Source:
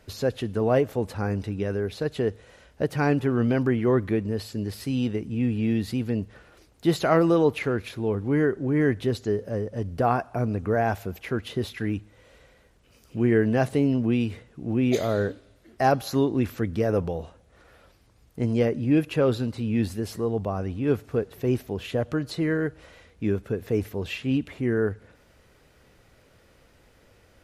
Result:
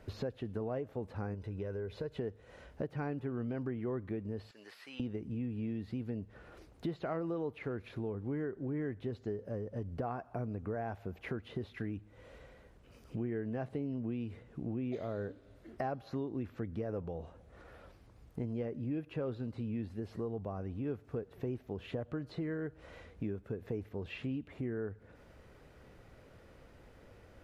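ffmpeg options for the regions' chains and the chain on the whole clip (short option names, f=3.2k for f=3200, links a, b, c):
-filter_complex "[0:a]asettb=1/sr,asplit=3[a][b][c];[a]atrim=end=1.344[d];[b]atrim=start=1.34:end=2.18,asetpts=PTS-STARTPTS,afade=t=in:d=0.004:c=qsin,afade=t=out:st=0.836:d=0.004:c=qsin,acompressor=threshold=-35dB:ratio=1.5:attack=3.2:release=140:knee=1:detection=peak,aecho=1:1:2:0.42,atrim=end_sample=37044[e];[c]atrim=start=2.176[f];[d][e]acrossfade=d=0.004:c1=hsin:c2=qsin[g];[g][f]acrossfade=d=0.004:c1=qsin:c2=hsin,asettb=1/sr,asplit=3[h][i][j];[h]atrim=end=4.514[k];[i]atrim=start=4.51:end=5,asetpts=PTS-STARTPTS,afade=t=in:d=0.004:c=qsin,afade=t=out:st=0.486:d=0.004:c=qsin,highpass=1.3k,acrossover=split=3200[l][m];[m]acompressor=threshold=-52dB:ratio=4:attack=1:release=60[n];[l][n]amix=inputs=2:normalize=0[o];[j]atrim=start=4.996[p];[k][o]acrossfade=d=0.004:c1=hsin:c2=qsin[q];[q][p]acrossfade=d=0.004:c1=qsin:c2=hsin,acrossover=split=4500[r][s];[s]acompressor=threshold=-55dB:ratio=4:attack=1:release=60[t];[r][t]amix=inputs=2:normalize=0,highshelf=f=2.5k:g=-11,acompressor=threshold=-39dB:ratio=4,volume=1dB"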